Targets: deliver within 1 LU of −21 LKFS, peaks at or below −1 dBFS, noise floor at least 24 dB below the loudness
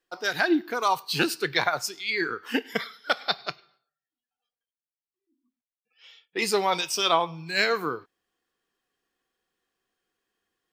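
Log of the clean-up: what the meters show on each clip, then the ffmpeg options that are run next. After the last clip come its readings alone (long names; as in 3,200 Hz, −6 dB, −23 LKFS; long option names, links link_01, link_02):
integrated loudness −26.0 LKFS; sample peak −8.0 dBFS; target loudness −21.0 LKFS
→ -af "volume=5dB"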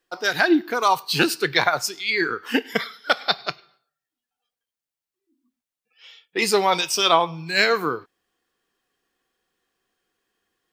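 integrated loudness −21.0 LKFS; sample peak −3.0 dBFS; background noise floor −90 dBFS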